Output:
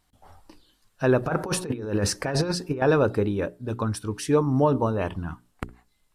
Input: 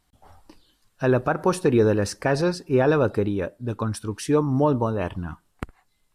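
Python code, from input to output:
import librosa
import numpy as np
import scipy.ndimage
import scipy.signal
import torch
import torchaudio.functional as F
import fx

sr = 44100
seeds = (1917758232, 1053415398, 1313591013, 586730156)

y = fx.over_compress(x, sr, threshold_db=-24.0, ratio=-0.5, at=(1.23, 2.82))
y = fx.hum_notches(y, sr, base_hz=60, count=7)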